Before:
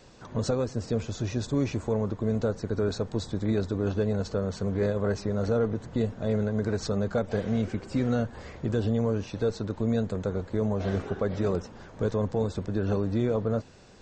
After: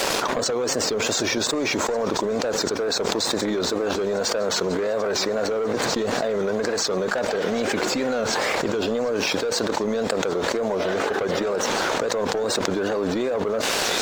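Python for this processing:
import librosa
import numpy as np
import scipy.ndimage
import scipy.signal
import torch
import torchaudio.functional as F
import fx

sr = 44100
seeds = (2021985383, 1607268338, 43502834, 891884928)

p1 = scipy.signal.sosfilt(scipy.signal.butter(2, 450.0, 'highpass', fs=sr, output='sos'), x)
p2 = fx.level_steps(p1, sr, step_db=12)
p3 = p1 + F.gain(torch.from_numpy(p2), -2.5).numpy()
p4 = fx.transient(p3, sr, attack_db=6, sustain_db=0)
p5 = 10.0 ** (-23.0 / 20.0) * np.tanh(p4 / 10.0 ** (-23.0 / 20.0))
p6 = fx.wow_flutter(p5, sr, seeds[0], rate_hz=2.1, depth_cents=110.0)
p7 = np.sign(p6) * np.maximum(np.abs(p6) - 10.0 ** (-56.0 / 20.0), 0.0)
p8 = p7 + fx.echo_wet_highpass(p7, sr, ms=742, feedback_pct=81, hz=3100.0, wet_db=-15, dry=0)
p9 = fx.env_flatten(p8, sr, amount_pct=100)
y = F.gain(torch.from_numpy(p9), 2.0).numpy()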